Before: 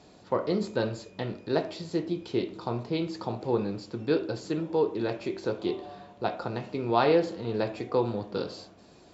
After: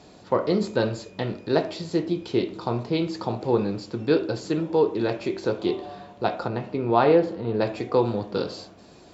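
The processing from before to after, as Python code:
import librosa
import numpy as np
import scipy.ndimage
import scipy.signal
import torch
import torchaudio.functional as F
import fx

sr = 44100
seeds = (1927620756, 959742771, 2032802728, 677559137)

y = fx.lowpass(x, sr, hz=fx.line((6.47, 2300.0), (7.6, 1400.0)), slope=6, at=(6.47, 7.6), fade=0.02)
y = F.gain(torch.from_numpy(y), 5.0).numpy()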